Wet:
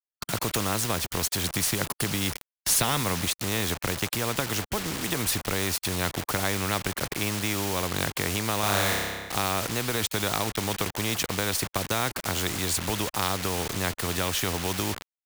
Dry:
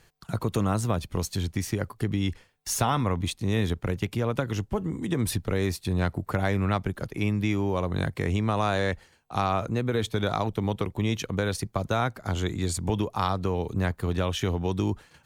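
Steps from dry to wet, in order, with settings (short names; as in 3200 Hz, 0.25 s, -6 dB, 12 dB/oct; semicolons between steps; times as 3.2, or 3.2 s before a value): 1.44–3.26 fifteen-band EQ 160 Hz +8 dB, 4000 Hz +5 dB, 10000 Hz +10 dB; bit-crush 7-bit; 8.6–9.35 flutter echo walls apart 5.1 m, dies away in 0.85 s; spectral compressor 2:1; gain -1 dB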